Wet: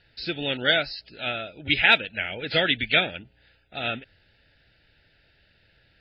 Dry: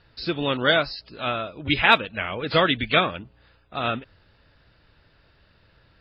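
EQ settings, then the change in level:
Butterworth band-reject 1,100 Hz, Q 1.9
parametric band 2,500 Hz +7.5 dB 2.1 octaves
−5.5 dB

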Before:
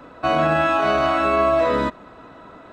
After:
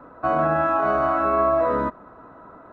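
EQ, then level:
high shelf with overshoot 2,000 Hz −14 dB, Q 1.5
−3.5 dB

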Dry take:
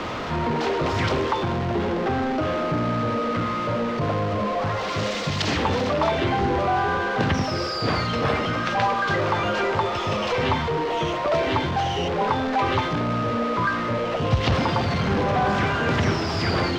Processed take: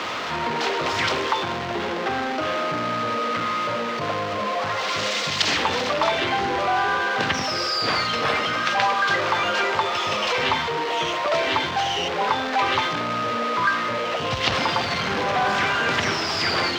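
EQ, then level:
spectral tilt +4 dB per octave
high-shelf EQ 5,600 Hz −11 dB
+2.0 dB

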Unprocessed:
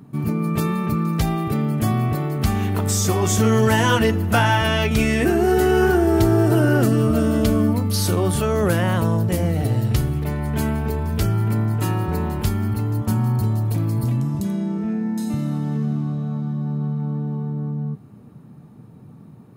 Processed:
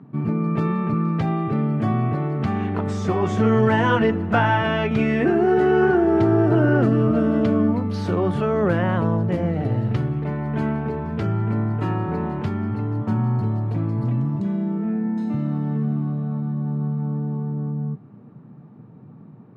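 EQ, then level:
high-pass filter 110 Hz 24 dB per octave
low-pass filter 2,000 Hz 12 dB per octave
0.0 dB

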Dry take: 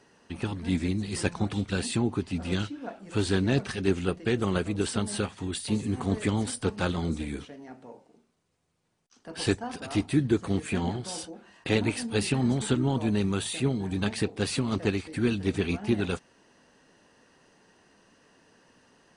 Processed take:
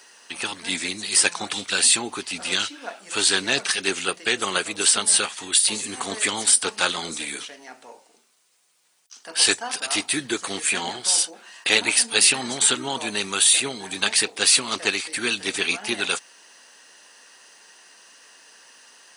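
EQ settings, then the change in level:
high-pass filter 690 Hz 6 dB per octave
spectral tilt +3.5 dB per octave
+9.0 dB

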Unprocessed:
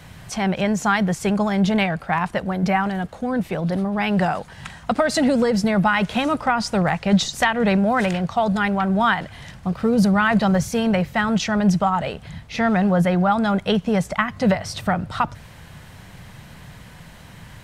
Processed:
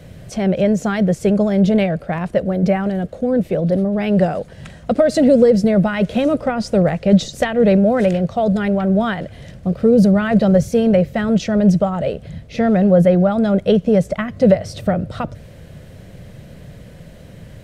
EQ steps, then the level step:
low shelf with overshoot 710 Hz +7.5 dB, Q 3
−3.5 dB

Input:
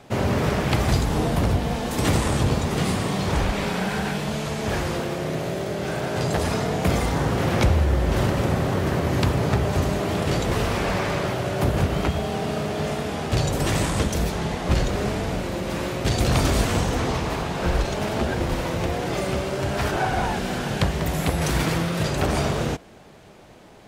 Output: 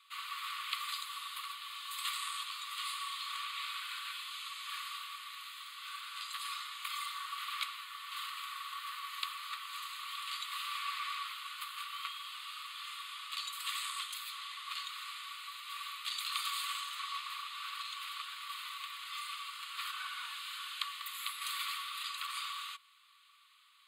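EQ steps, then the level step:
Chebyshev high-pass with heavy ripple 1,100 Hz, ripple 9 dB
parametric band 2,900 Hz −3 dB 1.8 octaves
phaser with its sweep stopped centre 1,600 Hz, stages 6
+2.5 dB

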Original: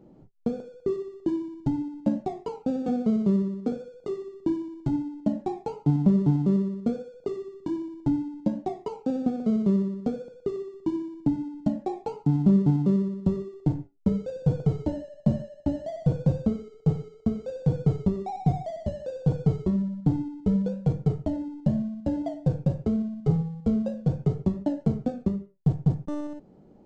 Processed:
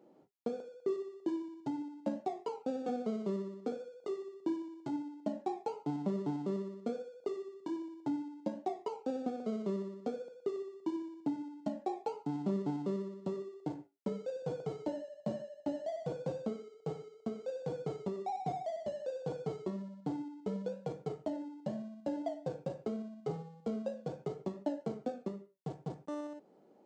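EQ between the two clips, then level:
high-pass filter 400 Hz 12 dB per octave
−3.5 dB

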